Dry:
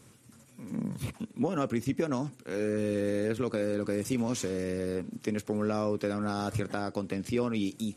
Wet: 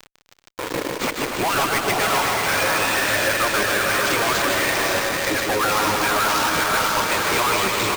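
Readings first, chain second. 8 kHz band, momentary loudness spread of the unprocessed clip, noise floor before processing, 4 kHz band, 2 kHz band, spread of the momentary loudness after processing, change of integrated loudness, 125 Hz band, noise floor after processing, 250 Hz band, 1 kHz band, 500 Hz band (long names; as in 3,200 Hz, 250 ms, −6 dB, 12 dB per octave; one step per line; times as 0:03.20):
+19.5 dB, 6 LU, −57 dBFS, +23.0 dB, +23.5 dB, 5 LU, +12.5 dB, +2.0 dB, −56 dBFS, +1.0 dB, +20.0 dB, +7.5 dB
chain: running median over 15 samples
reverb reduction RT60 0.78 s
gate on every frequency bin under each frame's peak −10 dB weak
reverb reduction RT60 1.9 s
high-pass filter 950 Hz 6 dB per octave
in parallel at −2.5 dB: downward compressor, threshold −58 dBFS, peak gain reduction 17.5 dB
on the sum: feedback delay with all-pass diffusion 531 ms, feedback 40%, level −5.5 dB
fuzz pedal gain 59 dB, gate −57 dBFS
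on a send: bouncing-ball delay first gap 150 ms, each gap 0.7×, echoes 5
on the sum: bad sample-rate conversion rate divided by 4×, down none, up hold
level −6 dB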